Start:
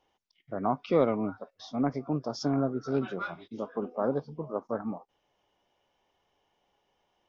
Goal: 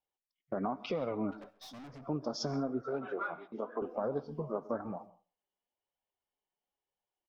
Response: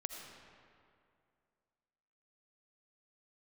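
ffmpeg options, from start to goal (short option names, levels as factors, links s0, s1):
-filter_complex "[0:a]agate=range=0.0562:threshold=0.00355:ratio=16:detection=peak,asettb=1/sr,asplit=3[s0][s1][s2];[s0]atrim=end=2.814[s3];[s1]atrim=start=2.81:end=3.82,asetpts=PTS-STARTPTS,afade=t=in:d=0.004:c=qsin,afade=t=out:st=1.006:d=0.004:c=qsin,acrossover=split=310 2100:gain=0.2 1 0.1[s4][s5][s6];[s4][s5][s6]amix=inputs=3:normalize=0[s7];[s2]atrim=start=3.816[s8];[s3][s7]acrossfade=d=0.004:c1=hsin:c2=qsin[s9];[s9][s8]acrossfade=d=0.004:c1=qsin:c2=hsin,alimiter=limit=0.0944:level=0:latency=1:release=121,acompressor=threshold=0.0141:ratio=2.5,flanger=delay=1.1:depth=4.4:regen=-36:speed=1:shape=triangular,asettb=1/sr,asplit=3[s10][s11][s12];[s10]atrim=end=1.314[s13];[s11]atrim=start=1.31:end=2.06,asetpts=PTS-STARTPTS,afade=t=in:d=0.004:c=qsin,afade=t=out:st=0.746:d=0.004:c=qsin,aeval=exprs='(tanh(501*val(0)+0.15)-tanh(0.15))/501':c=same[s14];[s12]atrim=start=2.056[s15];[s13][s14]acrossfade=d=0.004:c1=hsin:c2=qsin[s16];[s16][s15]acrossfade=d=0.004:c1=qsin:c2=hsin,asplit=2[s17][s18];[s18]adelay=134.1,volume=0.0708,highshelf=f=4000:g=-3.02[s19];[s17][s19]amix=inputs=2:normalize=0,asplit=2[s20][s21];[1:a]atrim=start_sample=2205,afade=t=out:st=0.25:d=0.01,atrim=end_sample=11466[s22];[s21][s22]afir=irnorm=-1:irlink=0,volume=0.355[s23];[s20][s23]amix=inputs=2:normalize=0,volume=1.78"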